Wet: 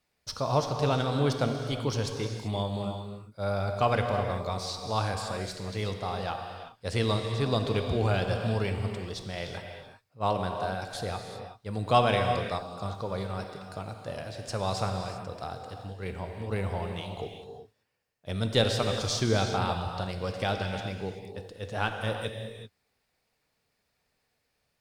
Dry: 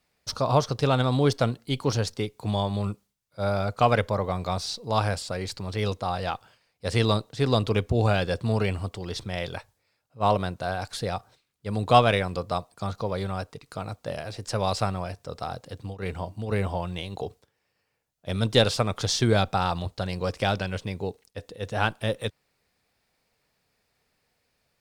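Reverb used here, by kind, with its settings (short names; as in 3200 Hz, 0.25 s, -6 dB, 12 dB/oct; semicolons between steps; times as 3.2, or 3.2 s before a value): non-linear reverb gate 0.41 s flat, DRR 4 dB; gain -5 dB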